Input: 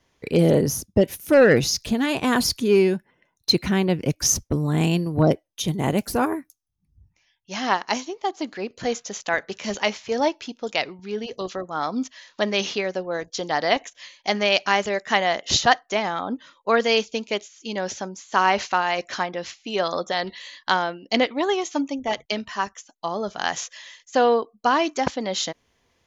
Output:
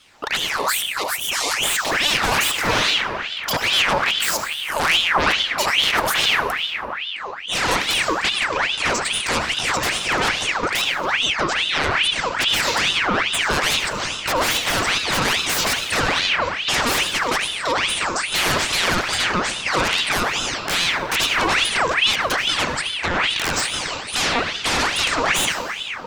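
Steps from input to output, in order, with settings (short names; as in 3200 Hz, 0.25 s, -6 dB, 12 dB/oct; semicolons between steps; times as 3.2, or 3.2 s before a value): 4.3–4.8 pre-emphasis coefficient 0.9; sine folder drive 19 dB, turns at -4 dBFS; limiter -8.5 dBFS, peak gain reduction 7.5 dB; 0.37–1.65 spectral gain 450–2700 Hz -20 dB; on a send at -4 dB: reverb RT60 3.5 s, pre-delay 72 ms; on the sum: ring modulator with a swept carrier 2000 Hz, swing 65%, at 2.4 Hz; gain -6 dB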